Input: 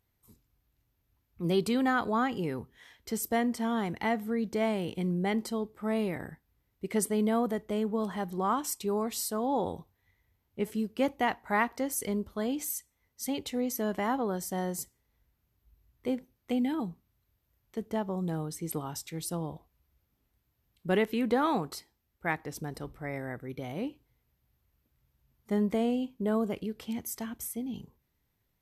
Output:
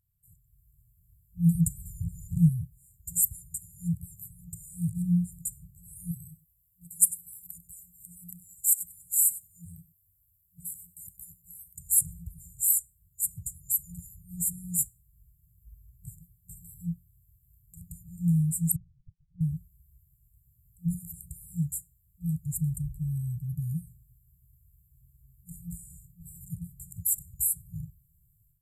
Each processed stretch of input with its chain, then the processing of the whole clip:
1.55–2.49 de-esser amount 30% + low shelf 170 Hz +11.5 dB
6.11–11.75 pre-emphasis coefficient 0.8 + echo 97 ms -17 dB
18.76–19.41 auto swell 0.265 s + inverted band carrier 3200 Hz
whole clip: FFT band-reject 180–7000 Hz; AGC gain up to 12.5 dB

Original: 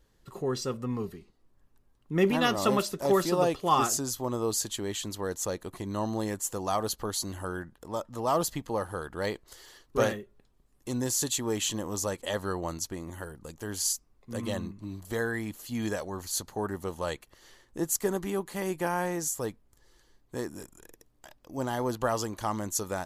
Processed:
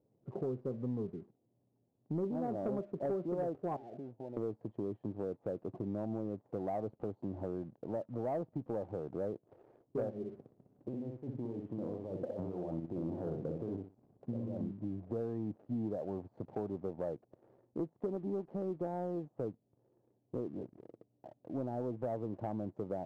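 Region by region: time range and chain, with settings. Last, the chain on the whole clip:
3.76–4.37 Chebyshev low-pass 930 Hz, order 10 + compressor 10:1, threshold -38 dBFS + low shelf 340 Hz -10.5 dB
10.1–14.61 negative-ratio compressor -41 dBFS + feedback echo 61 ms, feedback 26%, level -4 dB
whole clip: Chebyshev band-pass 110–700 Hz, order 3; compressor 4:1, threshold -38 dBFS; sample leveller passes 1

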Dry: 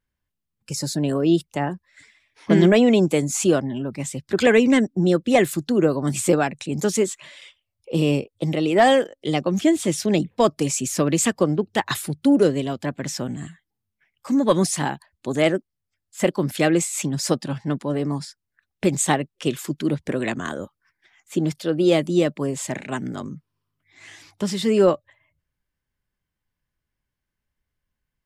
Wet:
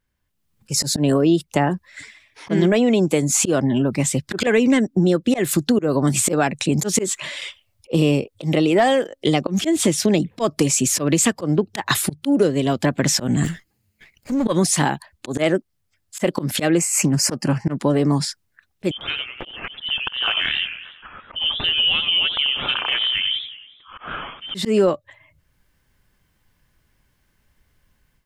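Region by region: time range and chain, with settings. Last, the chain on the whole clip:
13.44–14.46 minimum comb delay 0.44 ms + compressor 3:1, threshold -27 dBFS
16.78–17.75 Butterworth band-stop 3600 Hz, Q 2.2 + Doppler distortion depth 0.17 ms
18.91–24.55 inverted band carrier 3300 Hz + compressor 3:1, threshold -39 dBFS + warbling echo 92 ms, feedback 53%, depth 204 cents, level -10 dB
whole clip: AGC gain up to 13 dB; auto swell 0.187 s; compressor 4:1, threshold -20 dBFS; gain +5 dB

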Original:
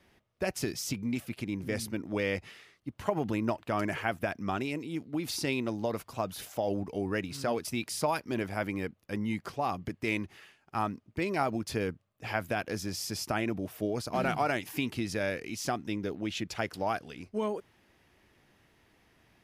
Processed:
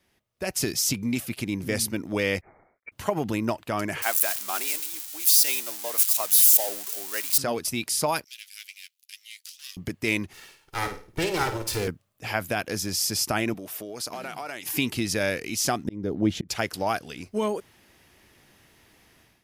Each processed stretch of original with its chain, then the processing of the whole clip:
2.41–2.92 G.711 law mismatch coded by A + HPF 440 Hz + inverted band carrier 2600 Hz
4.02–7.38 switching spikes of -24 dBFS + HPF 640 Hz + three-band expander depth 70%
8.24–9.77 half-wave gain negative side -12 dB + inverse Chebyshev high-pass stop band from 660 Hz, stop band 70 dB + doubler 12 ms -13.5 dB
10.33–11.88 minimum comb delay 2.2 ms + de-hum 438.4 Hz, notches 27 + flutter echo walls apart 9.1 m, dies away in 0.36 s
13.54–14.66 HPF 400 Hz 6 dB/oct + compressor 5:1, threshold -38 dBFS
15.84–16.49 notch 2600 Hz, Q 10 + auto swell 0.363 s + tilt shelf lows +9 dB, about 1100 Hz
whole clip: high shelf 4300 Hz +10.5 dB; AGC gain up to 12 dB; gain -6.5 dB

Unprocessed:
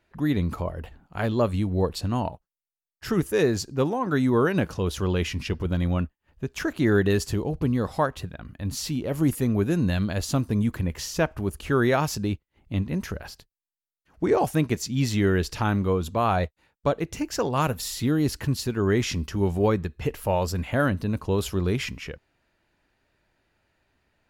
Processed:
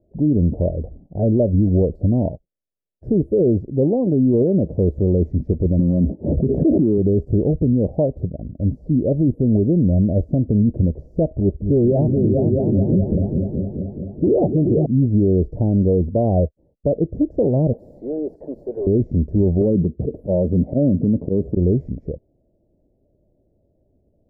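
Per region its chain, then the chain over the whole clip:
5.79–6.98 HPF 150 Hz + tilt shelf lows +9 dB, about 810 Hz + fast leveller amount 70%
11.4–14.86 dispersion highs, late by 0.11 s, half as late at 2000 Hz + repeats that get brighter 0.213 s, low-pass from 200 Hz, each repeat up 2 oct, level -3 dB
17.73–18.87 Bessel high-pass 820 Hz, order 4 + power-law curve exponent 0.5
19.61–21.57 HPF 130 Hz 6 dB/oct + bell 200 Hz +10 dB 2.6 oct + auto swell 0.107 s
whole clip: de-esser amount 85%; elliptic low-pass 610 Hz, stop band 50 dB; maximiser +19 dB; gain -8 dB

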